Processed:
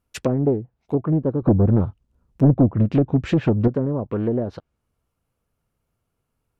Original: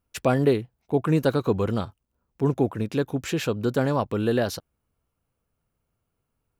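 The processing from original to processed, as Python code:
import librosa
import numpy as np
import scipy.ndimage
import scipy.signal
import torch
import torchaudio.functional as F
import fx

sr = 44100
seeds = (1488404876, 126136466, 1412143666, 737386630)

y = fx.env_lowpass_down(x, sr, base_hz=490.0, full_db=-19.0)
y = fx.low_shelf(y, sr, hz=260.0, db=12.0, at=(1.42, 3.68))
y = fx.doppler_dist(y, sr, depth_ms=0.76)
y = y * librosa.db_to_amplitude(2.0)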